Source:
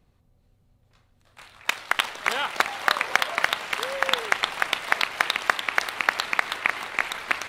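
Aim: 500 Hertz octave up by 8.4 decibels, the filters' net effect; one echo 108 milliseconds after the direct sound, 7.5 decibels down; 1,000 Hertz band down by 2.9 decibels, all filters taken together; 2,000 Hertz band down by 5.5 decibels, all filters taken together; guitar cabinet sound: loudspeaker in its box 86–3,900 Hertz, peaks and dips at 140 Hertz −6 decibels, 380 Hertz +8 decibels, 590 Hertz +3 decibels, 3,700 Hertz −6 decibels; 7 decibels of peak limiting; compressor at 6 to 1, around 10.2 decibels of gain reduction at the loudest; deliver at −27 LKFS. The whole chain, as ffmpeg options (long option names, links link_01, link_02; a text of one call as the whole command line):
ffmpeg -i in.wav -af "equalizer=frequency=500:width_type=o:gain=8,equalizer=frequency=1000:width_type=o:gain=-5,equalizer=frequency=2000:width_type=o:gain=-5.5,acompressor=threshold=-31dB:ratio=6,alimiter=limit=-20dB:level=0:latency=1,highpass=86,equalizer=frequency=140:width_type=q:width=4:gain=-6,equalizer=frequency=380:width_type=q:width=4:gain=8,equalizer=frequency=590:width_type=q:width=4:gain=3,equalizer=frequency=3700:width_type=q:width=4:gain=-6,lowpass=frequency=3900:width=0.5412,lowpass=frequency=3900:width=1.3066,aecho=1:1:108:0.422,volume=10dB" out.wav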